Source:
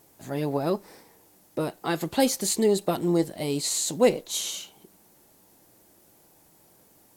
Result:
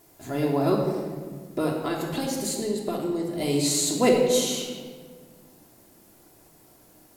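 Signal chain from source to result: 1.73–3.33 compressor, threshold -29 dBFS, peak gain reduction 12 dB; reverb RT60 1.6 s, pre-delay 3 ms, DRR -1 dB

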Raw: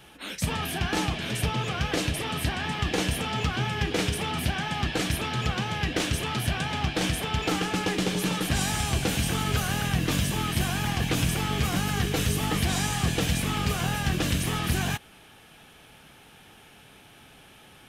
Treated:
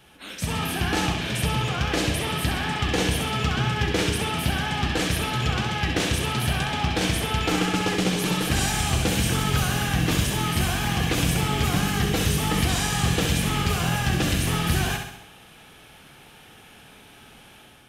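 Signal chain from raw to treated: on a send: flutter echo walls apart 11.3 m, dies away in 0.72 s; on the sum: AGC gain up to 5 dB; gain -3 dB

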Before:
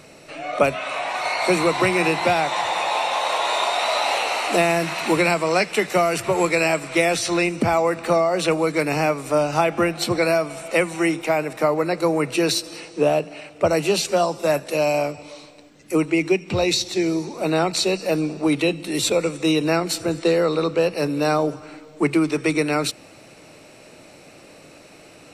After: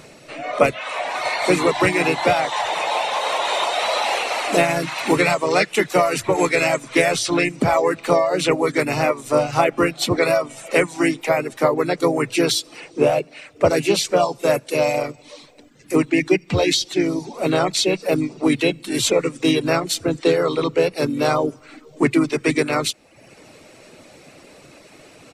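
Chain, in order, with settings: reverb removal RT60 0.75 s; harmoniser -3 st -6 dB; gain +1.5 dB

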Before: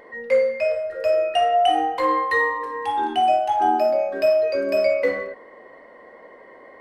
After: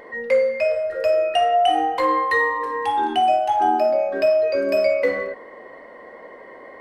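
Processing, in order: 3.8–4.57 high shelf 9400 Hz -11 dB; in parallel at +1.5 dB: compressor, threshold -25 dBFS, peak gain reduction 11 dB; on the sum: gain -2.5 dB

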